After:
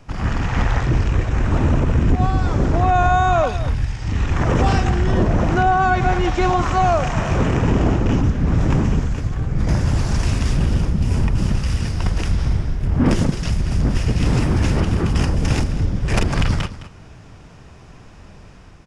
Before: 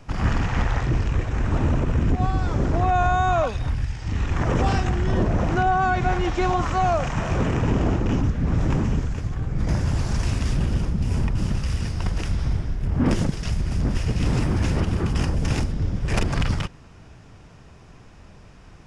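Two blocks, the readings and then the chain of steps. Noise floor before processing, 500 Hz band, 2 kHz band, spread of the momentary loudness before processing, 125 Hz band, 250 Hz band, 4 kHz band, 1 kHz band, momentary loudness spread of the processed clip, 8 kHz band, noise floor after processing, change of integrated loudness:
-47 dBFS, +4.5 dB, +4.5 dB, 6 LU, +4.5 dB, +4.5 dB, +4.5 dB, +4.5 dB, 6 LU, +4.5 dB, -42 dBFS, +4.5 dB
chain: AGC gain up to 4.5 dB; on a send: echo 0.212 s -14.5 dB

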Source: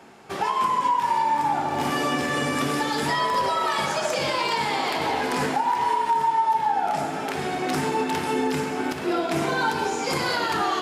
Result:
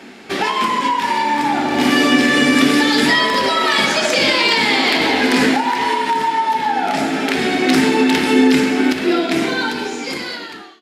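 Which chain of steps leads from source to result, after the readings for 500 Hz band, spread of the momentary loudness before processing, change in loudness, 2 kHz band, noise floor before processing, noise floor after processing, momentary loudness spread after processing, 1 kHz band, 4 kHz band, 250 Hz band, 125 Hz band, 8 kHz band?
+7.5 dB, 4 LU, +9.0 dB, +11.5 dB, -30 dBFS, -33 dBFS, 8 LU, +3.5 dB, +12.5 dB, +13.5 dB, +3.0 dB, +7.5 dB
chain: ending faded out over 2.15 s; ten-band EQ 125 Hz -9 dB, 250 Hz +11 dB, 1000 Hz -5 dB, 2000 Hz +7 dB, 4000 Hz +7 dB; gain +6.5 dB

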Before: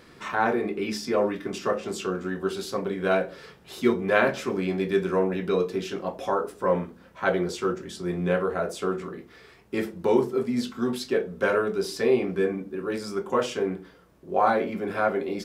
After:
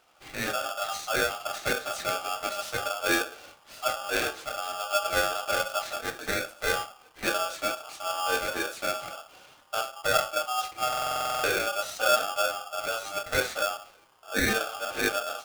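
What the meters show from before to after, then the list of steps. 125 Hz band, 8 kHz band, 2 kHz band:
-10.0 dB, +9.0 dB, +3.0 dB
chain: bell 1000 Hz -2.5 dB; AGC gain up to 11.5 dB; flange 0.42 Hz, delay 3.3 ms, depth 9.2 ms, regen -47%; stuck buffer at 10.88, samples 2048, times 11; polarity switched at an audio rate 1000 Hz; gain -8 dB

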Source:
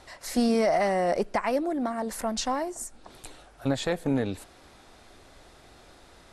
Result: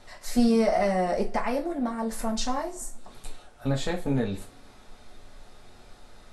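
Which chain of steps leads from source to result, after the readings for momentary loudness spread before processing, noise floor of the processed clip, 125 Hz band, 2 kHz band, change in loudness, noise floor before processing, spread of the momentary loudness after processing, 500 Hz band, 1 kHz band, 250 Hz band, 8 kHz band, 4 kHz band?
16 LU, -52 dBFS, +3.5 dB, -1.5 dB, +0.5 dB, -54 dBFS, 17 LU, -0.5 dB, -1.0 dB, +1.5 dB, -1.0 dB, -1.0 dB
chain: low shelf 77 Hz +11 dB; two-slope reverb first 0.26 s, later 1.5 s, from -26 dB, DRR 0.5 dB; gain -4 dB

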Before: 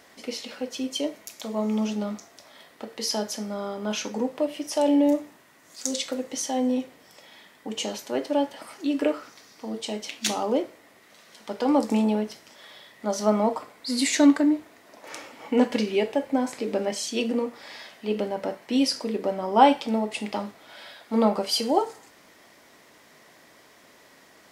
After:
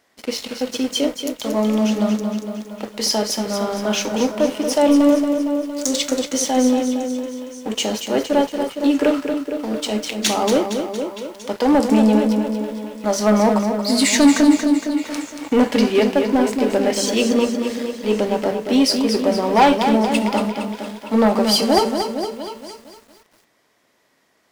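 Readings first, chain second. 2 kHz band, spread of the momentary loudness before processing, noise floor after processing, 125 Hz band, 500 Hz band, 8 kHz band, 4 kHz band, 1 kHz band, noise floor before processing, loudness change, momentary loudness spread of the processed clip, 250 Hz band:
+9.0 dB, 17 LU, -62 dBFS, n/a, +8.0 dB, +8.5 dB, +8.5 dB, +6.0 dB, -55 dBFS, +7.5 dB, 12 LU, +8.5 dB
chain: sample leveller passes 3; delay with a stepping band-pass 0.23 s, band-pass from 150 Hz, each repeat 1.4 oct, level -7.5 dB; lo-fi delay 0.231 s, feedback 55%, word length 7-bit, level -7.5 dB; gain -3 dB

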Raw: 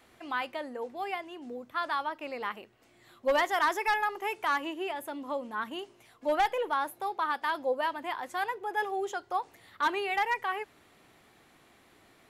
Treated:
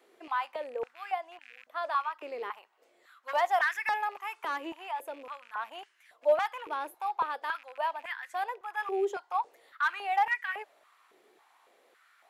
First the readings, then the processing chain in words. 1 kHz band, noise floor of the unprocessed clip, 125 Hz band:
-1.0 dB, -62 dBFS, n/a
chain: rattling part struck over -52 dBFS, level -37 dBFS; stepped high-pass 3.6 Hz 400–1700 Hz; gain -6.5 dB

